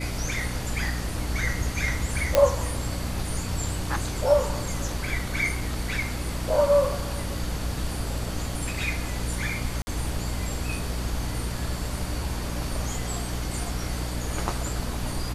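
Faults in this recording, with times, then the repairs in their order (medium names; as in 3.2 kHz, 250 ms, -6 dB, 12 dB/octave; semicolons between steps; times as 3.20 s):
hum 60 Hz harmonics 5 -32 dBFS
2.35 s: pop -4 dBFS
9.82–9.87 s: dropout 50 ms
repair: de-click; de-hum 60 Hz, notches 5; interpolate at 9.82 s, 50 ms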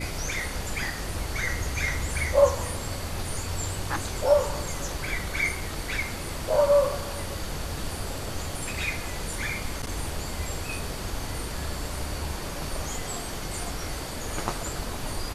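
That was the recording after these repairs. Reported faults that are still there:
nothing left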